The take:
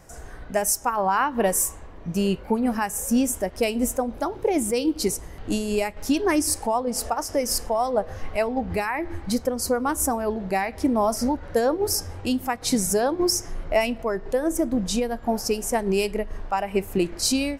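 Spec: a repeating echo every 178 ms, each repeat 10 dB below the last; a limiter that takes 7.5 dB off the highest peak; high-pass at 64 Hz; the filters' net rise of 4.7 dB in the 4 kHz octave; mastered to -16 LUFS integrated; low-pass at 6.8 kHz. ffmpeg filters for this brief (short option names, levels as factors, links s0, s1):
-af "highpass=64,lowpass=6800,equalizer=f=4000:t=o:g=7.5,alimiter=limit=0.158:level=0:latency=1,aecho=1:1:178|356|534|712:0.316|0.101|0.0324|0.0104,volume=3.16"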